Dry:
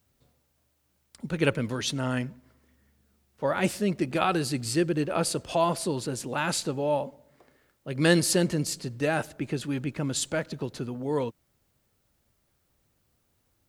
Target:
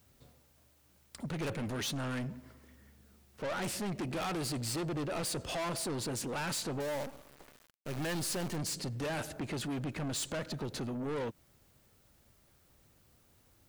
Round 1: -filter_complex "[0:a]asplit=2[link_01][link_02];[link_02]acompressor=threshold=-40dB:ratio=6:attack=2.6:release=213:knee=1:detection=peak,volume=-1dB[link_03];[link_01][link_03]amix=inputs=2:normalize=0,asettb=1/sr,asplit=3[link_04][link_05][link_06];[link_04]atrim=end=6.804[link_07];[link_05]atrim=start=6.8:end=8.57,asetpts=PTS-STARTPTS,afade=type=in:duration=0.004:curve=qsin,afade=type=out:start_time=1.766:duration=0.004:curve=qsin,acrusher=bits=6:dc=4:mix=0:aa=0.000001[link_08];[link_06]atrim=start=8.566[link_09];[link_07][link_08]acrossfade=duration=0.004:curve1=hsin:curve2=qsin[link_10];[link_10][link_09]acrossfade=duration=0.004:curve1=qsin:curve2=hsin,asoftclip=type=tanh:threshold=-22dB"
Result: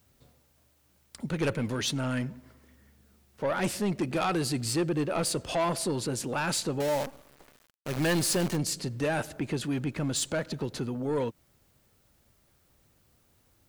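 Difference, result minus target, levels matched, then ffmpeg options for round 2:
soft clipping: distortion −7 dB
-filter_complex "[0:a]asplit=2[link_01][link_02];[link_02]acompressor=threshold=-40dB:ratio=6:attack=2.6:release=213:knee=1:detection=peak,volume=-1dB[link_03];[link_01][link_03]amix=inputs=2:normalize=0,asettb=1/sr,asplit=3[link_04][link_05][link_06];[link_04]atrim=end=6.804[link_07];[link_05]atrim=start=6.8:end=8.57,asetpts=PTS-STARTPTS,afade=type=in:duration=0.004:curve=qsin,afade=type=out:start_time=1.766:duration=0.004:curve=qsin,acrusher=bits=6:dc=4:mix=0:aa=0.000001[link_08];[link_06]atrim=start=8.566[link_09];[link_07][link_08]acrossfade=duration=0.004:curve1=hsin:curve2=qsin[link_10];[link_10][link_09]acrossfade=duration=0.004:curve1=qsin:curve2=hsin,asoftclip=type=tanh:threshold=-33.5dB"

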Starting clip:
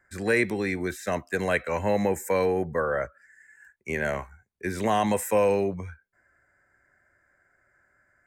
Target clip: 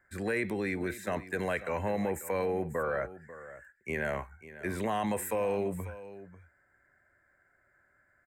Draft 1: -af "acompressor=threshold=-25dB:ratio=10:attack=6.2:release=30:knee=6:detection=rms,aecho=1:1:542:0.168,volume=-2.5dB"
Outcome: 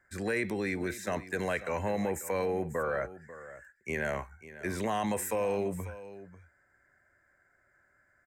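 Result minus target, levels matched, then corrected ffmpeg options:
8,000 Hz band +3.0 dB
-af "acompressor=threshold=-25dB:ratio=10:attack=6.2:release=30:knee=6:detection=rms,equalizer=frequency=5800:width=1.8:gain=-9,aecho=1:1:542:0.168,volume=-2.5dB"

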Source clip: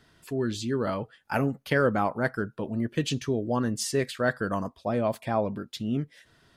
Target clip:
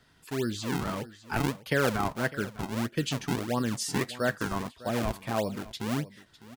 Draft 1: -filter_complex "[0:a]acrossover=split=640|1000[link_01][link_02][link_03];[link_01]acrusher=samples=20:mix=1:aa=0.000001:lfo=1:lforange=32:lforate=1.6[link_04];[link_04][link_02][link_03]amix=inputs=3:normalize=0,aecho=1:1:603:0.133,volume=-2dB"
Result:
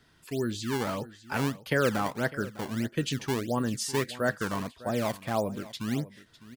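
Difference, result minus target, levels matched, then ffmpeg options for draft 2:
sample-and-hold swept by an LFO: distortion −7 dB
-filter_complex "[0:a]acrossover=split=640|1000[link_01][link_02][link_03];[link_01]acrusher=samples=43:mix=1:aa=0.000001:lfo=1:lforange=68.8:lforate=1.6[link_04];[link_04][link_02][link_03]amix=inputs=3:normalize=0,aecho=1:1:603:0.133,volume=-2dB"

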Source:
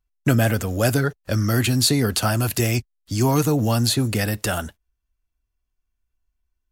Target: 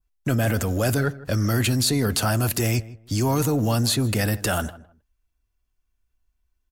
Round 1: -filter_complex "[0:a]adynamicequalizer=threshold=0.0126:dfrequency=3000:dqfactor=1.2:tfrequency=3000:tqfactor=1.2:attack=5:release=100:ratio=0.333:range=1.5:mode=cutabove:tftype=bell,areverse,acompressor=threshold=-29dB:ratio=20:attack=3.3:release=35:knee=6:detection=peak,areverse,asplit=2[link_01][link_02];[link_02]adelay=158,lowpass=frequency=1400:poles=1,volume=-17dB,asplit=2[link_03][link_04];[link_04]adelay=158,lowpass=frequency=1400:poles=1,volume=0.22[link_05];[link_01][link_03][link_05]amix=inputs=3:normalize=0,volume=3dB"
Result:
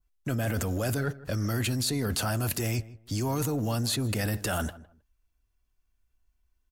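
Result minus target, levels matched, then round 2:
downward compressor: peak gain reduction +7.5 dB
-filter_complex "[0:a]adynamicequalizer=threshold=0.0126:dfrequency=3000:dqfactor=1.2:tfrequency=3000:tqfactor=1.2:attack=5:release=100:ratio=0.333:range=1.5:mode=cutabove:tftype=bell,areverse,acompressor=threshold=-21dB:ratio=20:attack=3.3:release=35:knee=6:detection=peak,areverse,asplit=2[link_01][link_02];[link_02]adelay=158,lowpass=frequency=1400:poles=1,volume=-17dB,asplit=2[link_03][link_04];[link_04]adelay=158,lowpass=frequency=1400:poles=1,volume=0.22[link_05];[link_01][link_03][link_05]amix=inputs=3:normalize=0,volume=3dB"

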